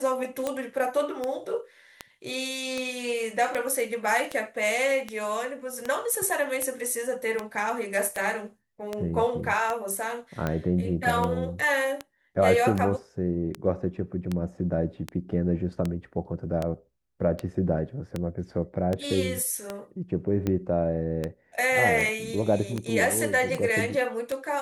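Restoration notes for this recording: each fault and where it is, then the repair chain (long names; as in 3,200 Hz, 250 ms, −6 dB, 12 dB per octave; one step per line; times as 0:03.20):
scratch tick 78 rpm −15 dBFS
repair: click removal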